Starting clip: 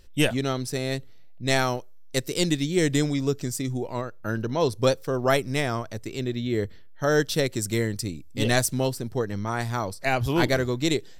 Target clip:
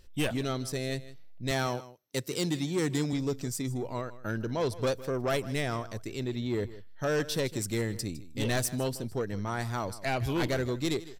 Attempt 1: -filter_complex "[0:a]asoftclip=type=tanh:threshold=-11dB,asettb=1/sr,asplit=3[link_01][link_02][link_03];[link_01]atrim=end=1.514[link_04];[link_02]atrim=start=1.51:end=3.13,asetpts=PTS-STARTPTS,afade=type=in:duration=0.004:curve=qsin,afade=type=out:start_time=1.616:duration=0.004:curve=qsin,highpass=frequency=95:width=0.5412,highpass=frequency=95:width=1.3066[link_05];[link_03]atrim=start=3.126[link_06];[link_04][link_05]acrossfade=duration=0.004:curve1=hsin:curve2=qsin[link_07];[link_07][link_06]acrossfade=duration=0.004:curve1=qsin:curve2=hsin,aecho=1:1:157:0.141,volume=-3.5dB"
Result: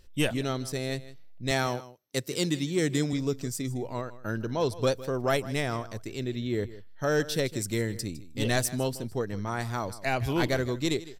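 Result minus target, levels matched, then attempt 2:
soft clipping: distortion −11 dB
-filter_complex "[0:a]asoftclip=type=tanh:threshold=-19.5dB,asettb=1/sr,asplit=3[link_01][link_02][link_03];[link_01]atrim=end=1.514[link_04];[link_02]atrim=start=1.51:end=3.13,asetpts=PTS-STARTPTS,afade=type=in:duration=0.004:curve=qsin,afade=type=out:start_time=1.616:duration=0.004:curve=qsin,highpass=frequency=95:width=0.5412,highpass=frequency=95:width=1.3066[link_05];[link_03]atrim=start=3.126[link_06];[link_04][link_05]acrossfade=duration=0.004:curve1=hsin:curve2=qsin[link_07];[link_07][link_06]acrossfade=duration=0.004:curve1=qsin:curve2=hsin,aecho=1:1:157:0.141,volume=-3.5dB"

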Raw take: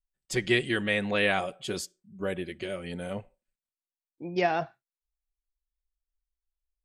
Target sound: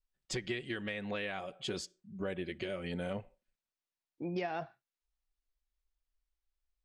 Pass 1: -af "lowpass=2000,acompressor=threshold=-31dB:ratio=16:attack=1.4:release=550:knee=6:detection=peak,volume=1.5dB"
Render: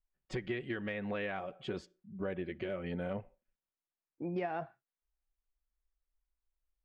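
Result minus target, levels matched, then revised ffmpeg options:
8,000 Hz band −16.5 dB
-af "lowpass=6000,acompressor=threshold=-31dB:ratio=16:attack=1.4:release=550:knee=6:detection=peak,volume=1.5dB"

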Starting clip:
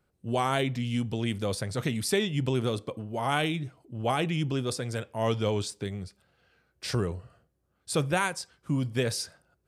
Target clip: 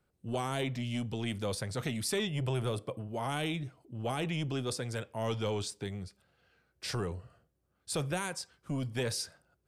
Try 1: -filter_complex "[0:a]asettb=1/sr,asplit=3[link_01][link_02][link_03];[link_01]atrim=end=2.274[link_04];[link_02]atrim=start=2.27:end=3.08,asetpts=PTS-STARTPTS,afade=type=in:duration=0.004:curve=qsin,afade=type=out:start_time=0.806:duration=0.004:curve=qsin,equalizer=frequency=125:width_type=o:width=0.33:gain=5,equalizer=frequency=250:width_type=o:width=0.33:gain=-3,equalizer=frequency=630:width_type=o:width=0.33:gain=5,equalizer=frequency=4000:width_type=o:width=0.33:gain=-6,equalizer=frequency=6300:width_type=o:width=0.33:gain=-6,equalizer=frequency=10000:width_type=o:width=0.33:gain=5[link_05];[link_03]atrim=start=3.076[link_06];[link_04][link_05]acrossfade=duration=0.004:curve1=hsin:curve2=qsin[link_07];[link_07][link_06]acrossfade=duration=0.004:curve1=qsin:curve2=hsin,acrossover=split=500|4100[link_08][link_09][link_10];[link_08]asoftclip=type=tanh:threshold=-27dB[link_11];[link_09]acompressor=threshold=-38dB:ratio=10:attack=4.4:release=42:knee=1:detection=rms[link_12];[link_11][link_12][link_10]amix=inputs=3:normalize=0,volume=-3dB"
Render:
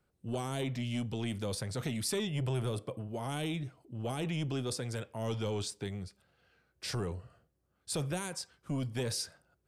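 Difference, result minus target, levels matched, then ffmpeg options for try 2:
downward compressor: peak gain reduction +6.5 dB
-filter_complex "[0:a]asettb=1/sr,asplit=3[link_01][link_02][link_03];[link_01]atrim=end=2.274[link_04];[link_02]atrim=start=2.27:end=3.08,asetpts=PTS-STARTPTS,afade=type=in:duration=0.004:curve=qsin,afade=type=out:start_time=0.806:duration=0.004:curve=qsin,equalizer=frequency=125:width_type=o:width=0.33:gain=5,equalizer=frequency=250:width_type=o:width=0.33:gain=-3,equalizer=frequency=630:width_type=o:width=0.33:gain=5,equalizer=frequency=4000:width_type=o:width=0.33:gain=-6,equalizer=frequency=6300:width_type=o:width=0.33:gain=-6,equalizer=frequency=10000:width_type=o:width=0.33:gain=5[link_05];[link_03]atrim=start=3.076[link_06];[link_04][link_05]acrossfade=duration=0.004:curve1=hsin:curve2=qsin[link_07];[link_07][link_06]acrossfade=duration=0.004:curve1=qsin:curve2=hsin,acrossover=split=500|4100[link_08][link_09][link_10];[link_08]asoftclip=type=tanh:threshold=-27dB[link_11];[link_09]acompressor=threshold=-31dB:ratio=10:attack=4.4:release=42:knee=1:detection=rms[link_12];[link_11][link_12][link_10]amix=inputs=3:normalize=0,volume=-3dB"

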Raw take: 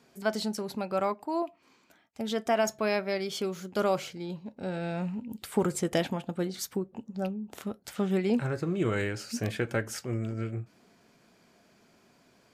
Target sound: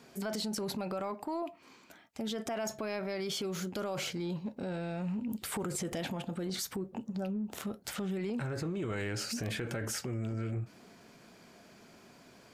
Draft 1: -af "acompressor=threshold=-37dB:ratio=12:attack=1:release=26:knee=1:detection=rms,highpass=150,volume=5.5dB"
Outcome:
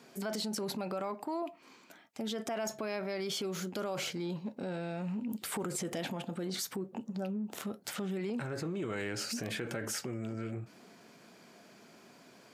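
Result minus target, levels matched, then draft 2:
125 Hz band −3.0 dB
-af "acompressor=threshold=-37dB:ratio=12:attack=1:release=26:knee=1:detection=rms,volume=5.5dB"

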